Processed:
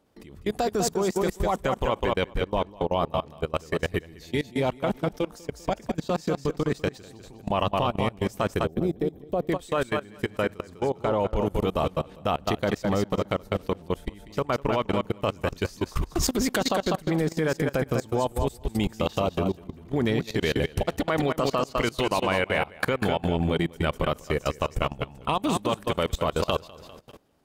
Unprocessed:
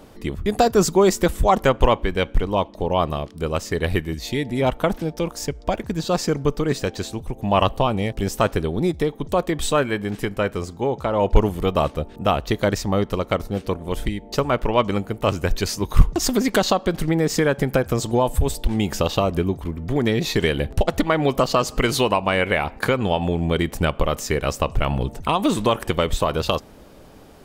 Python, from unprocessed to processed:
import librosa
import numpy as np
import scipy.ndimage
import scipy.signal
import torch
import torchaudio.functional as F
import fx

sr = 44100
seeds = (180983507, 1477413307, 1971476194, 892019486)

y = fx.highpass(x, sr, hz=55.0, slope=6)
y = fx.echo_feedback(y, sr, ms=199, feedback_pct=30, wet_db=-6.0)
y = fx.level_steps(y, sr, step_db=22)
y = fx.spec_box(y, sr, start_s=8.66, length_s=0.84, low_hz=790.0, high_hz=12000.0, gain_db=-9)
y = F.gain(torch.from_numpy(y), -1.5).numpy()